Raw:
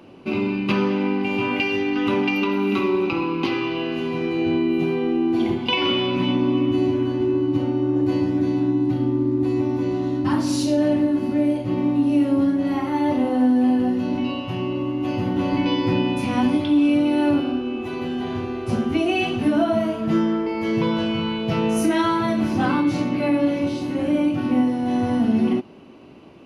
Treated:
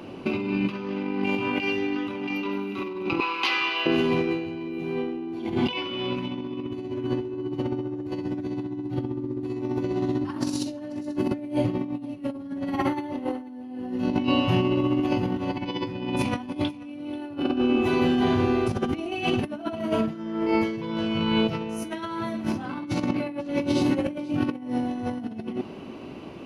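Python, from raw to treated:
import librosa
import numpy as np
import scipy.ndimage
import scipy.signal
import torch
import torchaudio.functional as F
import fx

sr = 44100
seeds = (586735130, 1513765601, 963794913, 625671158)

y = fx.highpass(x, sr, hz=1100.0, slope=12, at=(3.2, 3.86))
y = fx.over_compress(y, sr, threshold_db=-26.0, ratio=-0.5)
y = y + 10.0 ** (-21.0 / 20.0) * np.pad(y, (int(488 * sr / 1000.0), 0))[:len(y)]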